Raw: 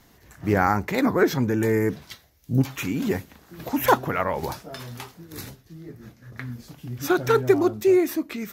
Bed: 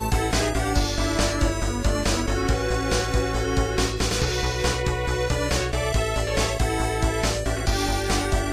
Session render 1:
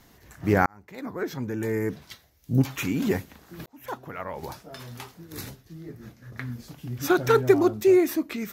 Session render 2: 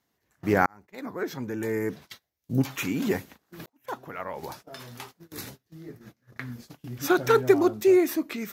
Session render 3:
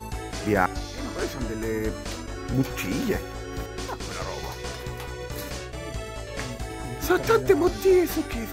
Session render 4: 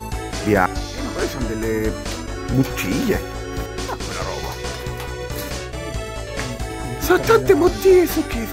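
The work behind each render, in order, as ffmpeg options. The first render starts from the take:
-filter_complex "[0:a]asplit=3[a][b][c];[a]atrim=end=0.66,asetpts=PTS-STARTPTS,afade=t=out:st=0.656:d=0.004:c=hsin[d];[b]atrim=start=0.66:end=3.66,asetpts=PTS-STARTPTS,afade=t=in:d=2.05,afade=t=out:st=2.996:d=0.004:c=hsin[e];[c]atrim=start=3.66,asetpts=PTS-STARTPTS,afade=t=in:d=1.8[f];[d][e][f]concat=n=3:v=0:a=1"
-af "highpass=f=180:p=1,agate=range=-19dB:threshold=-45dB:ratio=16:detection=peak"
-filter_complex "[1:a]volume=-11dB[a];[0:a][a]amix=inputs=2:normalize=0"
-af "volume=6.5dB,alimiter=limit=-1dB:level=0:latency=1"

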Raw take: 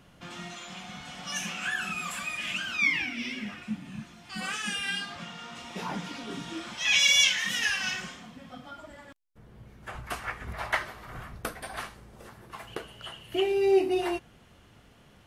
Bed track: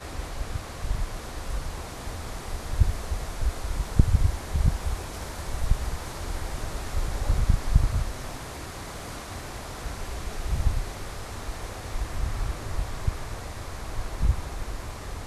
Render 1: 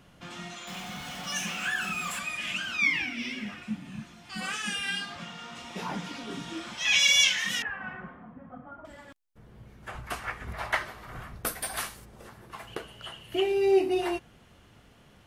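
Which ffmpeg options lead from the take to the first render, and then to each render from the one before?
-filter_complex "[0:a]asettb=1/sr,asplit=3[a][b][c];[a]atrim=end=0.674[d];[b]atrim=start=0.67:end=2.19,asetpts=PTS-STARTPTS,afade=t=in:d=0.004:c=qsin,afade=t=out:st=1.516:d=0.004:c=qsin,aeval=exprs='val(0)+0.5*0.00841*sgn(val(0))':c=same[e];[c]atrim=start=2.186[f];[d][e]acrossfade=d=0.004:c1=hsin:c2=qsin[g];[g][f]acrossfade=d=0.004:c1=qsin:c2=hsin,asettb=1/sr,asplit=3[h][i][j];[h]atrim=end=7.624[k];[i]atrim=start=7.62:end=8.85,asetpts=PTS-STARTPTS,afade=t=in:d=0.004:c=qsin,afade=t=out:st=1.226:d=0.004:c=qsin,lowpass=f=1.5k:w=0.5412,lowpass=f=1.5k:w=1.3066[l];[j]atrim=start=8.846[m];[k][l]acrossfade=d=0.004:c1=hsin:c2=qsin[n];[n][m]acrossfade=d=0.004:c1=qsin:c2=hsin,asplit=3[o][p][q];[o]afade=t=out:st=11.45:d=0.02[r];[p]aemphasis=mode=production:type=75kf,afade=t=in:st=11.45:d=0.02,afade=t=out:st=12.04:d=0.02[s];[q]afade=t=in:st=12.04:d=0.02[t];[r][s][t]amix=inputs=3:normalize=0"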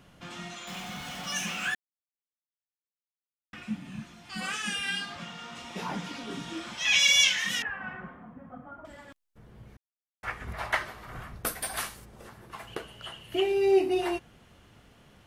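-filter_complex "[0:a]asplit=5[a][b][c][d][e];[a]atrim=end=1.75,asetpts=PTS-STARTPTS,afade=t=out:st=1.746:d=0.004:c=hsin[f];[b]atrim=start=1.75:end=3.53,asetpts=PTS-STARTPTS,volume=0[g];[c]atrim=start=3.53:end=9.77,asetpts=PTS-STARTPTS,afade=t=in:d=0.004:c=hsin,afade=t=out:st=6.236:d=0.004:c=hsin[h];[d]atrim=start=9.77:end=10.23,asetpts=PTS-STARTPTS,volume=0[i];[e]atrim=start=10.23,asetpts=PTS-STARTPTS,afade=t=in:d=0.004:c=hsin[j];[f][g][h][i][j]concat=n=5:v=0:a=1"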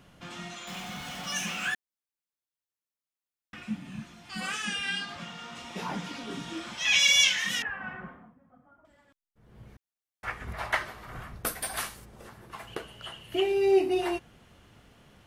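-filter_complex "[0:a]asettb=1/sr,asplit=3[a][b][c];[a]atrim=end=4.654[d];[b]atrim=start=4.65:end=5.09,asetpts=PTS-STARTPTS,afade=t=in:d=0.004:c=qsin,afade=t=out:st=0.436:d=0.004:c=qsin,lowpass=7.8k[e];[c]atrim=start=5.086[f];[d][e]acrossfade=d=0.004:c1=hsin:c2=qsin[g];[g][f]acrossfade=d=0.004:c1=qsin:c2=hsin,asplit=3[h][i][j];[h]atrim=end=8.37,asetpts=PTS-STARTPTS,afade=t=out:st=8.09:d=0.28:silence=0.188365[k];[i]atrim=start=8.37:end=9.34,asetpts=PTS-STARTPTS,volume=-14.5dB[l];[j]atrim=start=9.34,asetpts=PTS-STARTPTS,afade=t=in:d=0.28:silence=0.188365[m];[k][l][m]concat=n=3:v=0:a=1"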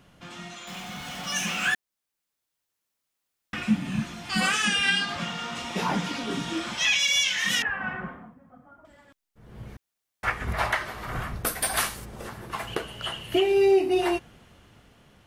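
-af "dynaudnorm=f=440:g=9:m=12dB,alimiter=limit=-13dB:level=0:latency=1:release=305"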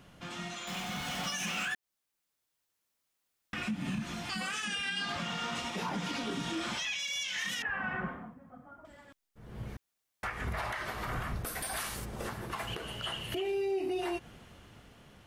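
-af "acompressor=threshold=-25dB:ratio=6,alimiter=level_in=2.5dB:limit=-24dB:level=0:latency=1:release=113,volume=-2.5dB"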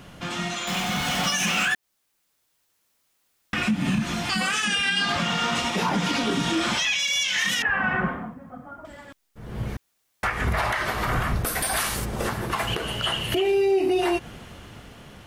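-af "volume=11.5dB"

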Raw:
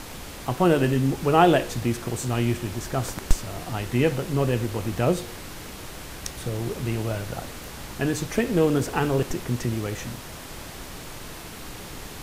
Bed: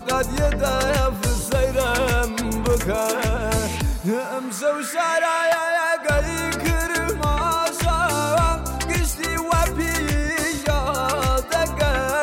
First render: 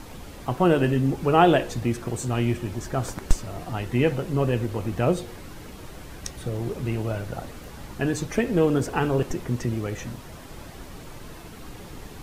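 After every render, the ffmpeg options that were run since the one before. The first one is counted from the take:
-af "afftdn=nr=8:nf=-39"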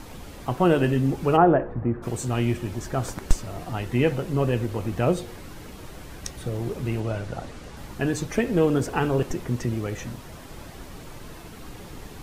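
-filter_complex "[0:a]asplit=3[a][b][c];[a]afade=t=out:st=1.36:d=0.02[d];[b]lowpass=f=1.5k:w=0.5412,lowpass=f=1.5k:w=1.3066,afade=t=in:st=1.36:d=0.02,afade=t=out:st=2.02:d=0.02[e];[c]afade=t=in:st=2.02:d=0.02[f];[d][e][f]amix=inputs=3:normalize=0,asettb=1/sr,asplit=3[g][h][i];[g]atrim=end=7.004[j];[h]atrim=start=7:end=7.77,asetpts=PTS-STARTPTS,afade=t=in:d=0.004:c=qsin,afade=t=out:st=0.766:d=0.004:c=qsin,lowpass=8.8k[k];[i]atrim=start=7.766[l];[j][k]acrossfade=d=0.004:c1=hsin:c2=qsin[m];[m][l]acrossfade=d=0.004:c1=qsin:c2=hsin"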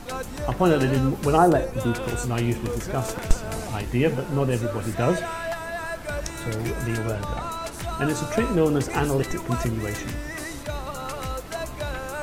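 -filter_complex "[1:a]volume=-11dB[a];[0:a][a]amix=inputs=2:normalize=0"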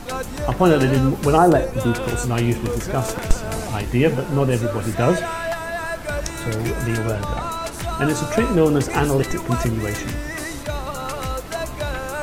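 -af "volume=4.5dB,alimiter=limit=-3dB:level=0:latency=1"

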